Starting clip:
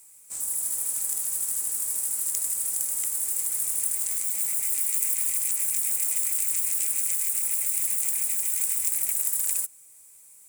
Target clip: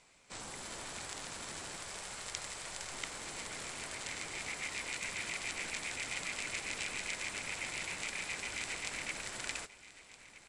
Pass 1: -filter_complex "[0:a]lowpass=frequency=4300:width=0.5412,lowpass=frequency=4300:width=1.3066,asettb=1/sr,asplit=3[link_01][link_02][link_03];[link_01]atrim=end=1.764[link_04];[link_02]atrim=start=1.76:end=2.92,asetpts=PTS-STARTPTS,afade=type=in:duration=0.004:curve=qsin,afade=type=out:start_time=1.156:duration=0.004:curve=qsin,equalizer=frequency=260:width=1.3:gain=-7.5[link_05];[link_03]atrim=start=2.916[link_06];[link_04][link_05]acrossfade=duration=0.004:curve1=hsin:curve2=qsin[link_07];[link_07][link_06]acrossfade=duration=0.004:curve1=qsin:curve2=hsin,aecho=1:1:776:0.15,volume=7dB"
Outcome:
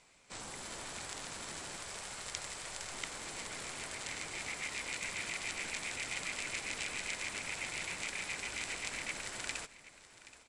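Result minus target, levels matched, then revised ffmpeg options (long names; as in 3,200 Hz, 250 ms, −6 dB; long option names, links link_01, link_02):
echo 492 ms early
-filter_complex "[0:a]lowpass=frequency=4300:width=0.5412,lowpass=frequency=4300:width=1.3066,asettb=1/sr,asplit=3[link_01][link_02][link_03];[link_01]atrim=end=1.764[link_04];[link_02]atrim=start=1.76:end=2.92,asetpts=PTS-STARTPTS,afade=type=in:duration=0.004:curve=qsin,afade=type=out:start_time=1.156:duration=0.004:curve=qsin,equalizer=frequency=260:width=1.3:gain=-7.5[link_05];[link_03]atrim=start=2.916[link_06];[link_04][link_05]acrossfade=duration=0.004:curve1=hsin:curve2=qsin[link_07];[link_07][link_06]acrossfade=duration=0.004:curve1=qsin:curve2=hsin,aecho=1:1:1268:0.15,volume=7dB"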